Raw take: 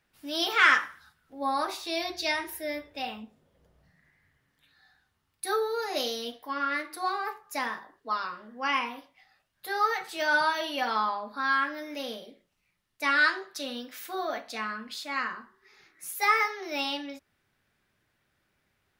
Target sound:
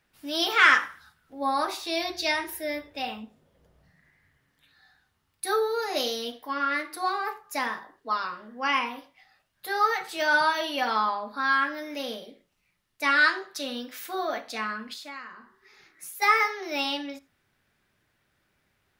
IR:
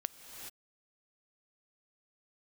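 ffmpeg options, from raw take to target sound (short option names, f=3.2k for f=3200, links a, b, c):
-filter_complex "[1:a]atrim=start_sample=2205,afade=t=out:st=0.14:d=0.01,atrim=end_sample=6615[a];[0:a][a]afir=irnorm=-1:irlink=0,asettb=1/sr,asplit=3[b][c][d];[b]atrim=end=14.934[e];[c]atrim=start=14.93:end=16.22,asetpts=PTS-STARTPTS,afade=t=in:d=0.004:c=qsin,afade=t=out:st=1.286:d=0.004:c=qsin,acompressor=threshold=-43dB:ratio=5[f];[d]atrim=start=16.216[g];[e][f]acrossfade=d=0.004:c1=hsin:c2=qsin[h];[h][g]acrossfade=d=0.004:c1=qsin:c2=hsin,volume=4dB"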